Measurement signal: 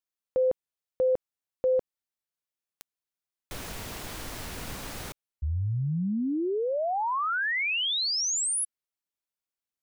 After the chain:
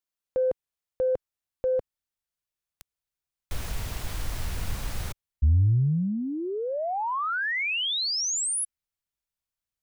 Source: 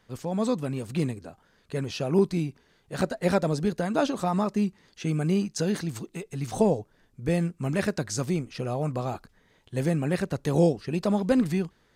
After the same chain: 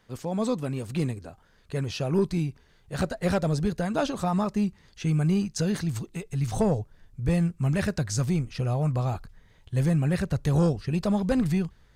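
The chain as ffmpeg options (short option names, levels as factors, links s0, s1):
-af "asubboost=boost=5:cutoff=120,aeval=exprs='0.355*sin(PI/2*1.41*val(0)/0.355)':c=same,volume=0.473"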